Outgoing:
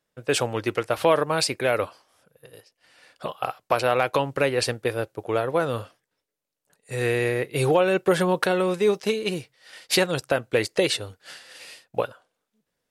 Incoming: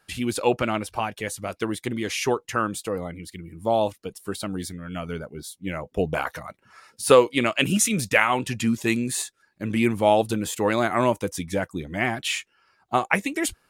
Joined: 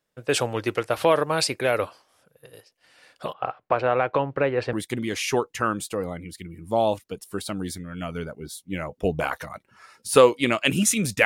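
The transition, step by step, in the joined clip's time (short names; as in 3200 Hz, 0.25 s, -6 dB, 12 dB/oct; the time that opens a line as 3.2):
outgoing
3.33–4.73 LPF 2000 Hz 12 dB/oct
4.73 switch to incoming from 1.67 s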